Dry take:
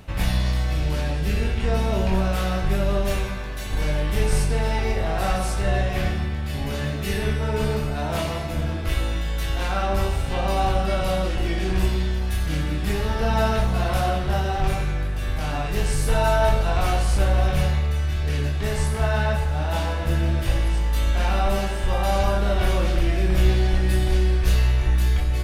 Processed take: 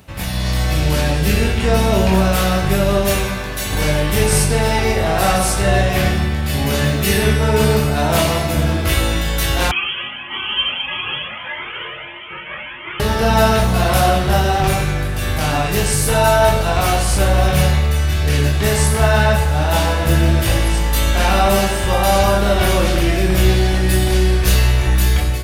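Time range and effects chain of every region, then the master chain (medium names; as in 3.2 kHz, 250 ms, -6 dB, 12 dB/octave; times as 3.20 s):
9.71–13.00 s: inverse Chebyshev high-pass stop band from 240 Hz, stop band 60 dB + frequency inversion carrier 3.9 kHz + Shepard-style flanger rising 1.6 Hz
whole clip: high-pass 72 Hz; treble shelf 6.9 kHz +9 dB; level rider gain up to 11.5 dB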